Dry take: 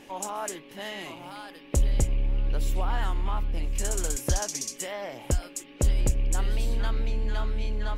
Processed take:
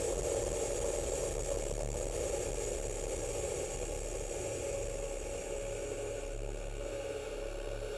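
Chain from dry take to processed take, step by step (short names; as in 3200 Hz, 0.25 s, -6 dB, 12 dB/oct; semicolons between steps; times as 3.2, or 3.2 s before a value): LPF 11000 Hz 24 dB/oct; resonant low shelf 310 Hz -10 dB, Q 3; Paulstretch 14×, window 1.00 s, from 1.86; notch comb 1000 Hz; core saturation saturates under 240 Hz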